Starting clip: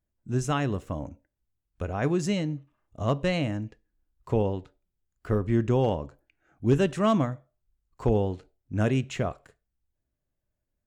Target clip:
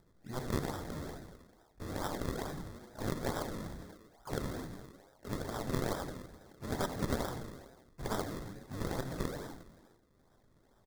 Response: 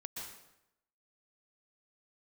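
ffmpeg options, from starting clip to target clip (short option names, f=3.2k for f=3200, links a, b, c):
-filter_complex "[0:a]volume=22dB,asoftclip=hard,volume=-22dB,lowshelf=f=330:g=-10.5,acompressor=threshold=-48dB:ratio=1.5,bandreject=f=60:t=h:w=6,bandreject=f=120:t=h:w=6,bandreject=f=180:t=h:w=6,bandreject=f=240:t=h:w=6,bandreject=f=300:t=h:w=6,bandreject=f=360:t=h:w=6,bandreject=f=420:t=h:w=6,bandreject=f=480:t=h:w=6,bandreject=f=540:t=h:w=6,asplit=9[a][b][c][d][e][f][g][h][i];[b]adelay=82,afreqshift=-130,volume=-6dB[j];[c]adelay=164,afreqshift=-260,volume=-10.4dB[k];[d]adelay=246,afreqshift=-390,volume=-14.9dB[l];[e]adelay=328,afreqshift=-520,volume=-19.3dB[m];[f]adelay=410,afreqshift=-650,volume=-23.7dB[n];[g]adelay=492,afreqshift=-780,volume=-28.2dB[o];[h]adelay=574,afreqshift=-910,volume=-32.6dB[p];[i]adelay=656,afreqshift=-1040,volume=-37.1dB[q];[a][j][k][l][m][n][o][p][q]amix=inputs=9:normalize=0,acrusher=bits=7:mode=log:mix=0:aa=0.000001,aeval=exprs='0.0596*(cos(1*acos(clip(val(0)/0.0596,-1,1)))-cos(1*PI/2))+0.00211*(cos(3*acos(clip(val(0)/0.0596,-1,1)))-cos(3*PI/2))+0.0015*(cos(4*acos(clip(val(0)/0.0596,-1,1)))-cos(4*PI/2))+0.000841*(cos(6*acos(clip(val(0)/0.0596,-1,1)))-cos(6*PI/2))+0.0188*(cos(7*acos(clip(val(0)/0.0596,-1,1)))-cos(7*PI/2))':c=same,asplit=2[r][s];[1:a]atrim=start_sample=2205,asetrate=61740,aresample=44100[t];[s][t]afir=irnorm=-1:irlink=0,volume=-16dB[u];[r][u]amix=inputs=2:normalize=0,acrusher=samples=39:mix=1:aa=0.000001:lfo=1:lforange=39:lforate=2.3,acompressor=mode=upward:threshold=-57dB:ratio=2.5,asuperstop=centerf=2600:order=12:qfactor=2.5,asplit=2[v][w];[w]asetrate=58866,aresample=44100,atempo=0.749154,volume=-10dB[x];[v][x]amix=inputs=2:normalize=0,volume=3dB"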